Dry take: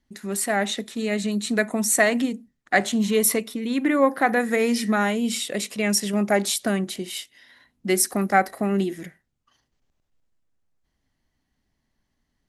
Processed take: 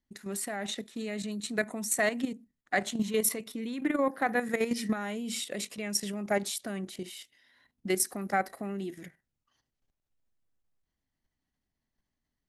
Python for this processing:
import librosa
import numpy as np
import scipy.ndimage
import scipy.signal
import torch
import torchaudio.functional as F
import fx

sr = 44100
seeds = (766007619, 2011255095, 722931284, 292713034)

y = fx.level_steps(x, sr, step_db=10)
y = y * 10.0 ** (-5.0 / 20.0)